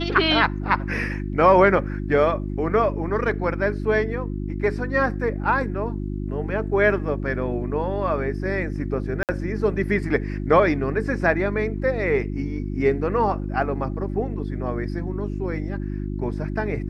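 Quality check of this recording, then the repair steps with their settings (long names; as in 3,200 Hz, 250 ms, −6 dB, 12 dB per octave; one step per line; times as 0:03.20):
mains hum 50 Hz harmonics 7 −28 dBFS
0:09.23–0:09.29: drop-out 58 ms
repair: hum removal 50 Hz, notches 7
repair the gap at 0:09.23, 58 ms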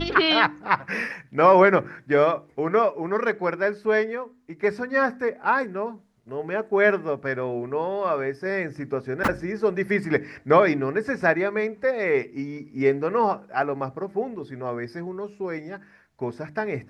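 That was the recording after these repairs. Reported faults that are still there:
none of them is left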